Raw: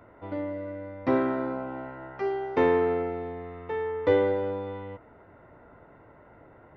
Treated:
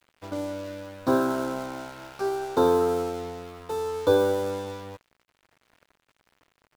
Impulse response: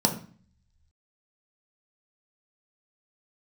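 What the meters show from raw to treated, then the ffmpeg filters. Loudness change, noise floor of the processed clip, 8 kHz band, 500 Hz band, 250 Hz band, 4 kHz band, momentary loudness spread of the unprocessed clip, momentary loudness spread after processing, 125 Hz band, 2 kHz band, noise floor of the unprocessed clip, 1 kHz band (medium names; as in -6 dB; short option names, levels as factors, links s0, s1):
+1.5 dB, -76 dBFS, no reading, +1.5 dB, +1.0 dB, +9.0 dB, 15 LU, 16 LU, +0.5 dB, -1.5 dB, -54 dBFS, +2.5 dB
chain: -af "afftfilt=real='re*(1-between(b*sr/4096,1700,3400))':imag='im*(1-between(b*sr/4096,1700,3400))':win_size=4096:overlap=0.75,aeval=exprs='sgn(val(0))*max(abs(val(0))-0.00422,0)':c=same,crystalizer=i=4.5:c=0,volume=1.19"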